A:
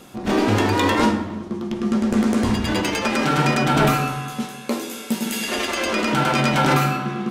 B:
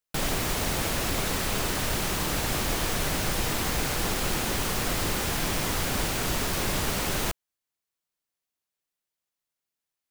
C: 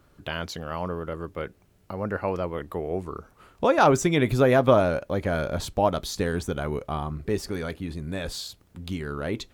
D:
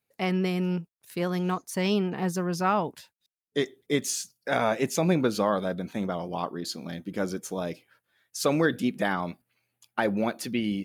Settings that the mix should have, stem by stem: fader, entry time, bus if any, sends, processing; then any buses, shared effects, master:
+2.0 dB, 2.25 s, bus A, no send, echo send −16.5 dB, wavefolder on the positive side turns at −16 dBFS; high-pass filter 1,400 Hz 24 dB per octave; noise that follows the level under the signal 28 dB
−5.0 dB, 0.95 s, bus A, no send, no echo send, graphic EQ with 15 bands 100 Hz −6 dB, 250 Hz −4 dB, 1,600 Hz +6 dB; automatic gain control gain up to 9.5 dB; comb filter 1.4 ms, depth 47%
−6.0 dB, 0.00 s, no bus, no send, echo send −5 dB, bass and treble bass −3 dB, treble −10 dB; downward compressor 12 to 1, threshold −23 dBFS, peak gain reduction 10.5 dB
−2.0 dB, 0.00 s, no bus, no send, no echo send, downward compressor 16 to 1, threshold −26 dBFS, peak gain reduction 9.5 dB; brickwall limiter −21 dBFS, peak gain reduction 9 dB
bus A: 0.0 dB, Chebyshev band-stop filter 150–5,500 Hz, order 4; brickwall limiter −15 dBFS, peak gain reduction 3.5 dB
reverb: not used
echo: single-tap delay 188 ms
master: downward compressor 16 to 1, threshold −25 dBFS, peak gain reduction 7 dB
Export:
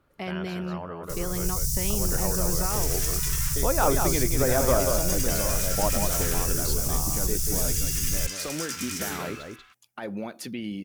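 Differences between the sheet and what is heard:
stem C: missing downward compressor 12 to 1, threshold −23 dBFS, peak gain reduction 10.5 dB
master: missing downward compressor 16 to 1, threshold −25 dBFS, peak gain reduction 7 dB

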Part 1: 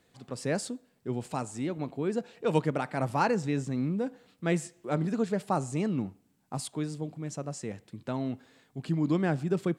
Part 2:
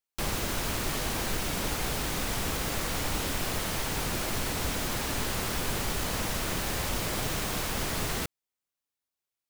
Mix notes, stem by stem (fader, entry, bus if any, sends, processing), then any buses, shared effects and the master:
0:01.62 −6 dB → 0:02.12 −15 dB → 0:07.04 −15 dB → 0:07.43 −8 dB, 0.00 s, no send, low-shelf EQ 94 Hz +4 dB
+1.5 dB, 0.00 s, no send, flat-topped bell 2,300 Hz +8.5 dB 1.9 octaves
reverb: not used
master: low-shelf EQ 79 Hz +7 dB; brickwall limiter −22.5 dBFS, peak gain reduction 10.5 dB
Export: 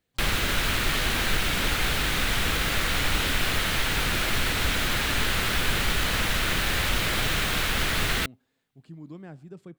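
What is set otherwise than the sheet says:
stem 1 −6.0 dB → −14.5 dB
master: missing brickwall limiter −22.5 dBFS, peak gain reduction 10.5 dB

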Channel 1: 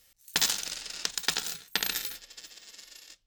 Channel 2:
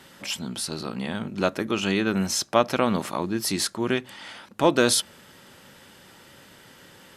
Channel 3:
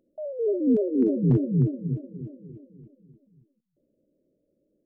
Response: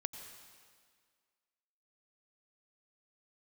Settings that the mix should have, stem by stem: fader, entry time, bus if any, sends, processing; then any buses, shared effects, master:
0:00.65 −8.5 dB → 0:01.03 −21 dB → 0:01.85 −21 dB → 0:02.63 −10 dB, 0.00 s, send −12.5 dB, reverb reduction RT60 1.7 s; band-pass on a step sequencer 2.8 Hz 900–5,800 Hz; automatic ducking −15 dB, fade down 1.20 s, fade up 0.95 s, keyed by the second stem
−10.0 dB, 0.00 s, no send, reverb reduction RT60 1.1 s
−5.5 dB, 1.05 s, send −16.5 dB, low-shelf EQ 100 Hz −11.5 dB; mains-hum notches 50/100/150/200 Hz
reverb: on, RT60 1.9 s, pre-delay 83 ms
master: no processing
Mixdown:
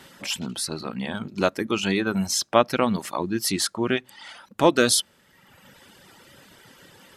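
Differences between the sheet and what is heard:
stem 1: send −12.5 dB → −20.5 dB
stem 2 −10.0 dB → +2.0 dB
stem 3: muted

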